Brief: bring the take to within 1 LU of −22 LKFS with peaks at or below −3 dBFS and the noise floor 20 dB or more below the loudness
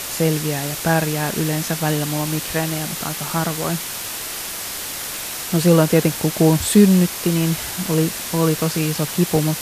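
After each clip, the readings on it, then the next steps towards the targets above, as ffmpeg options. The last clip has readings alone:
background noise floor −29 dBFS; target noise floor −40 dBFS; integrated loudness −19.5 LKFS; sample peak −2.0 dBFS; target loudness −22.0 LKFS
→ -af "afftdn=noise_reduction=11:noise_floor=-29"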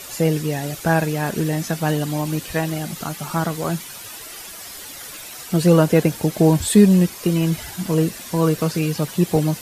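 background noise floor −36 dBFS; target noise floor −40 dBFS
→ -af "afftdn=noise_reduction=6:noise_floor=-36"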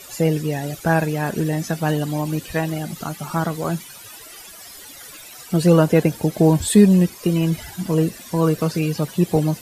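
background noise floor −41 dBFS; integrated loudness −20.0 LKFS; sample peak −3.0 dBFS; target loudness −22.0 LKFS
→ -af "volume=-2dB"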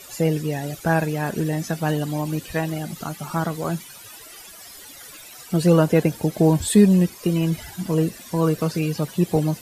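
integrated loudness −22.0 LKFS; sample peak −5.0 dBFS; background noise floor −43 dBFS

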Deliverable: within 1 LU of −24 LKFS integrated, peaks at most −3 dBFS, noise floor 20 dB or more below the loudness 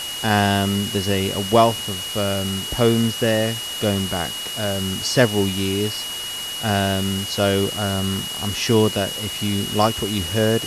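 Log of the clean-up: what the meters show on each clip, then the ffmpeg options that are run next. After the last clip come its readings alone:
interfering tone 2,900 Hz; level of the tone −28 dBFS; background noise floor −29 dBFS; target noise floor −41 dBFS; integrated loudness −20.5 LKFS; sample peak −3.0 dBFS; target loudness −24.0 LKFS
→ -af "bandreject=frequency=2900:width=30"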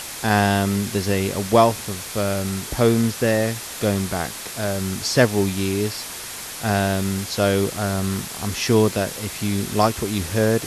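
interfering tone none found; background noise floor −34 dBFS; target noise floor −42 dBFS
→ -af "afftdn=noise_reduction=8:noise_floor=-34"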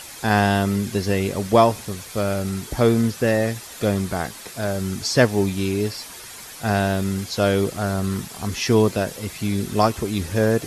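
background noise floor −39 dBFS; target noise floor −42 dBFS
→ -af "afftdn=noise_reduction=6:noise_floor=-39"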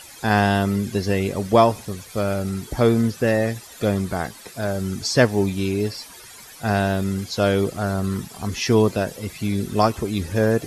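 background noise floor −43 dBFS; integrated loudness −22.0 LKFS; sample peak −3.5 dBFS; target loudness −24.0 LKFS
→ -af "volume=-2dB"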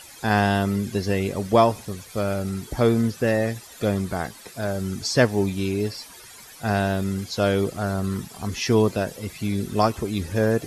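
integrated loudness −24.0 LKFS; sample peak −5.5 dBFS; background noise floor −45 dBFS

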